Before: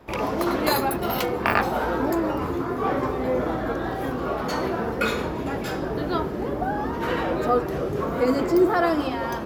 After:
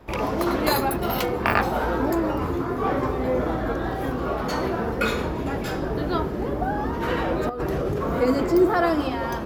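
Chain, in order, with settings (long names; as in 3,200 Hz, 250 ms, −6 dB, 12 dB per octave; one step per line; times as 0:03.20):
low-shelf EQ 75 Hz +9 dB
0:07.49–0:08.19: compressor whose output falls as the input rises −26 dBFS, ratio −1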